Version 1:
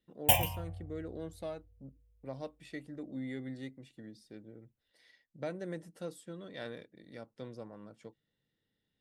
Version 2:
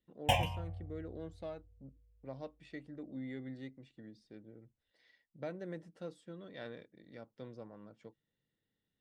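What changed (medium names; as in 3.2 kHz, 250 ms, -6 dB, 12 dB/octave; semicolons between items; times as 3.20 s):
speech -3.0 dB; master: add distance through air 100 m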